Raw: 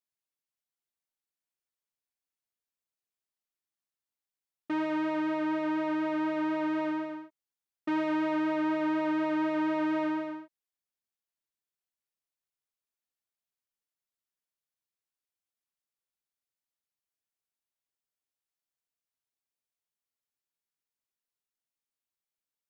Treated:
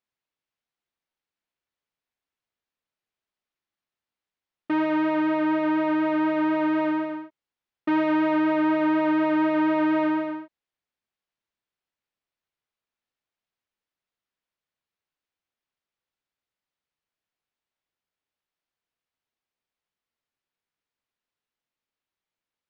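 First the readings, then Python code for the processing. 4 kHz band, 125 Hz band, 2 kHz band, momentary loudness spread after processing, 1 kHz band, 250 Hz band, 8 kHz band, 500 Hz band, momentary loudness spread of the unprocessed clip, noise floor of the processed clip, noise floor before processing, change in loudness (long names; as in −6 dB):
+5.0 dB, +7.0 dB, +6.5 dB, 7 LU, +7.0 dB, +7.0 dB, can't be measured, +7.0 dB, 7 LU, below −85 dBFS, below −85 dBFS, +7.0 dB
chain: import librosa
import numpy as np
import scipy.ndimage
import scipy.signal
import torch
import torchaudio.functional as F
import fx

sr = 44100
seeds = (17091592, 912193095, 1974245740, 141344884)

y = scipy.signal.sosfilt(scipy.signal.butter(2, 3600.0, 'lowpass', fs=sr, output='sos'), x)
y = y * 10.0 ** (7.0 / 20.0)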